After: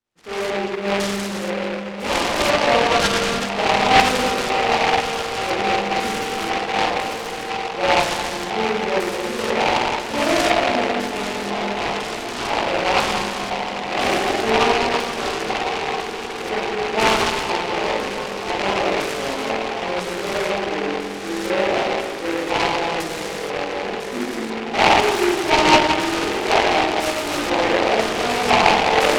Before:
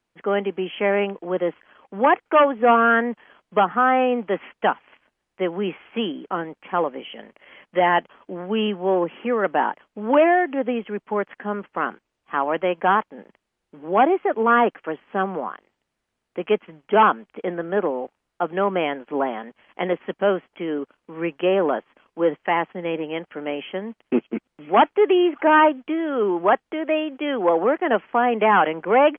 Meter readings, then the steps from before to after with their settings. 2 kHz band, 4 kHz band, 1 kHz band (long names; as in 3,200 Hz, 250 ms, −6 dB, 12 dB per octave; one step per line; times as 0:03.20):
+5.0 dB, can't be measured, +1.5 dB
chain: echo that builds up and dies away 160 ms, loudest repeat 8, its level −17.5 dB
spring reverb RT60 2.4 s, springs 45/54 ms, chirp 75 ms, DRR −9.5 dB
chorus effect 0.4 Hz, delay 17 ms, depth 3.9 ms
auto-filter low-pass square 1 Hz 880–2,600 Hz
short delay modulated by noise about 1,500 Hz, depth 0.15 ms
level −9.5 dB